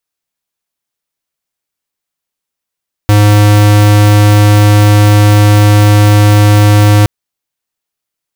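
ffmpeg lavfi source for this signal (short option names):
-f lavfi -i "aevalsrc='0.562*(2*lt(mod(104*t,1),0.5)-1)':d=3.97:s=44100"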